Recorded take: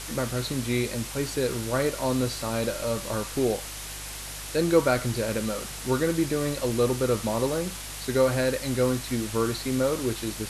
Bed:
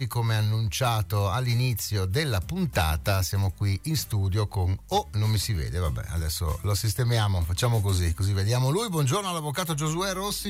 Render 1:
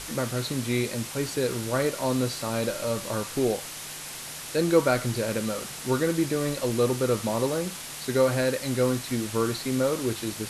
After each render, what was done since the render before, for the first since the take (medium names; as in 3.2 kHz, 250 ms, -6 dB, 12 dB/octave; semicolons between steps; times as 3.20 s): de-hum 50 Hz, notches 2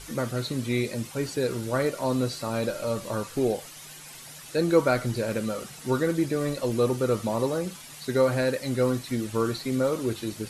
noise reduction 10 dB, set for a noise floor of -39 dBFS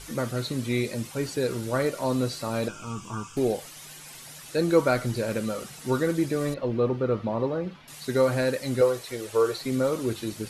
2.68–3.37 s: static phaser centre 2.8 kHz, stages 8; 6.54–7.88 s: distance through air 320 m; 8.81–9.61 s: resonant low shelf 340 Hz -8.5 dB, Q 3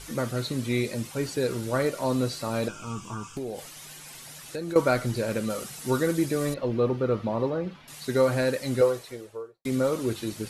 3.12–4.76 s: compression 10:1, threshold -29 dBFS; 5.50–7.50 s: treble shelf 6.2 kHz +6.5 dB; 8.77–9.65 s: studio fade out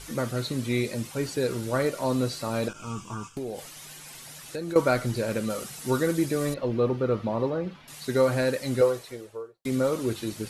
2.73–3.51 s: expander -41 dBFS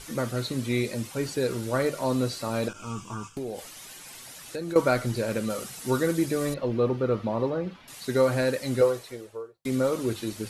hum notches 50/100/150 Hz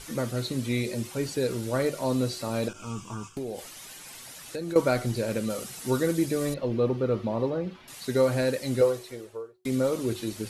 de-hum 368.4 Hz, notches 3; dynamic bell 1.3 kHz, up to -4 dB, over -43 dBFS, Q 1.1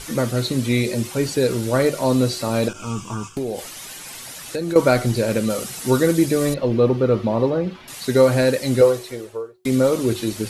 trim +8.5 dB; peak limiter -3 dBFS, peak gain reduction 2 dB